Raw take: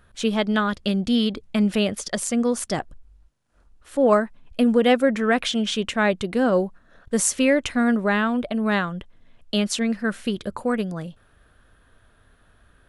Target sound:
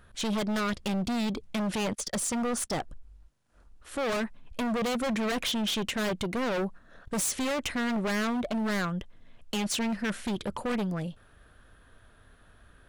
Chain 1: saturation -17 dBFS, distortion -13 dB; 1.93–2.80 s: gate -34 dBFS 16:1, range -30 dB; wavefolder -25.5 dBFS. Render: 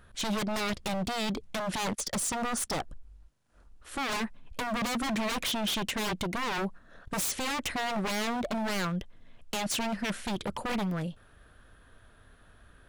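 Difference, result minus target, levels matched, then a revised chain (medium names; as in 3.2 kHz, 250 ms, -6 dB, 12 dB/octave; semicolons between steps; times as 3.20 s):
saturation: distortion -5 dB
saturation -23 dBFS, distortion -8 dB; 1.93–2.80 s: gate -34 dBFS 16:1, range -30 dB; wavefolder -25.5 dBFS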